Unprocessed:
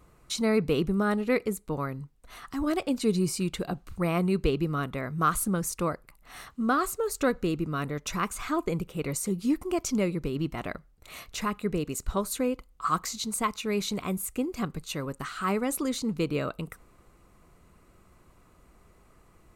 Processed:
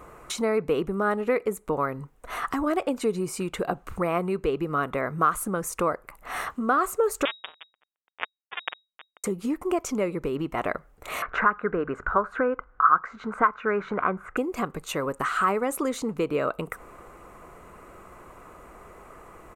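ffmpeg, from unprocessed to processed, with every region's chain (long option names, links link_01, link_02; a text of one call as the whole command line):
ffmpeg -i in.wav -filter_complex "[0:a]asettb=1/sr,asplit=3[link_01][link_02][link_03];[link_01]atrim=end=7.254[link_04];[link_02]atrim=start=7.25:end=9.24,asetpts=PTS-STARTPTS,afade=type=in:duration=0.004:curve=qsin,afade=type=out:start_time=1.986:duration=0.004:curve=qsin,acrusher=bits=2:mix=0:aa=0.5,lowpass=frequency=3200:width_type=q:width=0.5098,lowpass=frequency=3200:width_type=q:width=0.6013,lowpass=frequency=3200:width_type=q:width=0.9,lowpass=frequency=3200:width_type=q:width=2.563,afreqshift=-3800[link_05];[link_03]atrim=start=9.236[link_06];[link_04][link_05]acrossfade=duration=0.004:curve1=hsin:curve2=qsin[link_07];[link_07][link_06]acrossfade=duration=0.004:curve1=qsin:curve2=hsin,asettb=1/sr,asplit=3[link_08][link_09][link_10];[link_08]atrim=end=11.224[link_11];[link_09]atrim=start=11.22:end=14.37,asetpts=PTS-STARTPTS,afade=type=in:duration=0.004:curve=qsin,afade=type=out:start_time=3.146:duration=0.004:curve=qsin,lowpass=frequency=1500:width_type=q:width=6.9,bandreject=frequency=50:width_type=h:width=6,bandreject=frequency=100:width_type=h:width=6,bandreject=frequency=150:width_type=h:width=6[link_12];[link_10]atrim=start=14.366[link_13];[link_11][link_12]acrossfade=duration=0.004:curve1=hsin:curve2=qsin[link_14];[link_14][link_13]acrossfade=duration=0.004:curve1=qsin:curve2=hsin,acompressor=threshold=-39dB:ratio=3,firequalizer=gain_entry='entry(140,0);entry(450,11);entry(1200,12);entry(4400,-3);entry(6800,3)':delay=0.05:min_phase=1,volume=5dB" out.wav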